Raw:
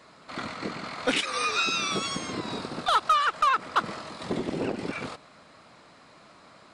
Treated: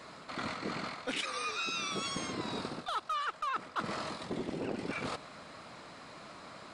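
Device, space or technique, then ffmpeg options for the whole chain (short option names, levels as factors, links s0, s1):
compression on the reversed sound: -af "areverse,acompressor=threshold=0.0126:ratio=6,areverse,volume=1.5"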